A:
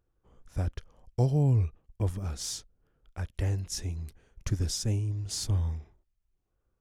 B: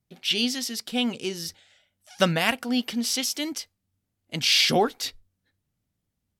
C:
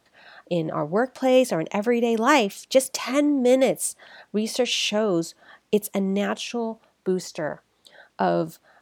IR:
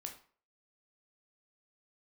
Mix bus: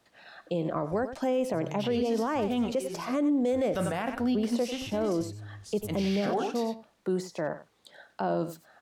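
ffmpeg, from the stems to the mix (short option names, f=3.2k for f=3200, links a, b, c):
-filter_complex "[0:a]alimiter=limit=-23dB:level=0:latency=1,adelay=350,volume=-10dB[a];[1:a]highpass=150,agate=range=-33dB:threshold=-54dB:ratio=3:detection=peak,adelay=1550,volume=1dB,asplit=3[b][c][d];[c]volume=-6dB[e];[d]volume=-13dB[f];[2:a]volume=-2.5dB,asplit=3[g][h][i];[h]volume=-15.5dB[j];[i]apad=whole_len=350357[k];[b][k]sidechaincompress=threshold=-36dB:ratio=8:attack=16:release=148[l];[3:a]atrim=start_sample=2205[m];[e][m]afir=irnorm=-1:irlink=0[n];[f][j]amix=inputs=2:normalize=0,aecho=0:1:93:1[o];[a][l][g][n][o]amix=inputs=5:normalize=0,acrossover=split=110|1500[p][q][r];[p]acompressor=threshold=-49dB:ratio=4[s];[q]acompressor=threshold=-21dB:ratio=4[t];[r]acompressor=threshold=-45dB:ratio=4[u];[s][t][u]amix=inputs=3:normalize=0,alimiter=limit=-20dB:level=0:latency=1:release=20"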